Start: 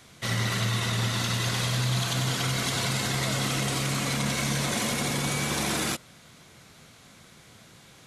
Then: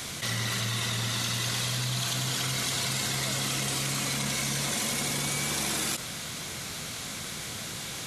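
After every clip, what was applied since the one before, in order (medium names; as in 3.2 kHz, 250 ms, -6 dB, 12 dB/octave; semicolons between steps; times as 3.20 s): treble shelf 2.7 kHz +8 dB; level flattener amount 70%; trim -7 dB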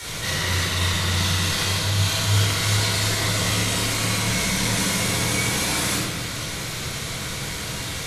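frequency shift -26 Hz; simulated room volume 940 m³, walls mixed, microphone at 4.5 m; trim -1.5 dB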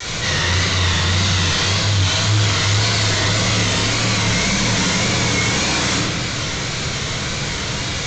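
sine folder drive 9 dB, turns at -6.5 dBFS; vibrato 1.8 Hz 68 cents; resampled via 16 kHz; trim -5.5 dB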